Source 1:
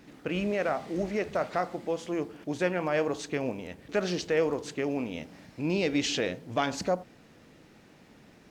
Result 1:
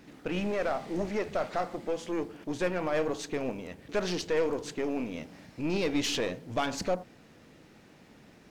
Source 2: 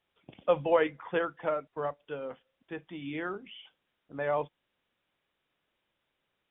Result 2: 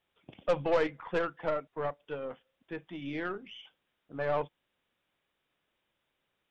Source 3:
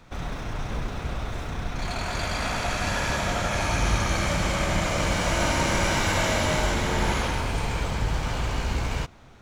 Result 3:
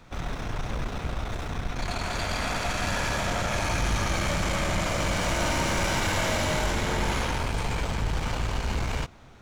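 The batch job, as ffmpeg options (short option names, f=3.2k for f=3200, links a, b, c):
-af "aeval=exprs='0.299*(cos(1*acos(clip(val(0)/0.299,-1,1)))-cos(1*PI/2))+0.0237*(cos(8*acos(clip(val(0)/0.299,-1,1)))-cos(8*PI/2))':c=same,asoftclip=type=tanh:threshold=-19dB"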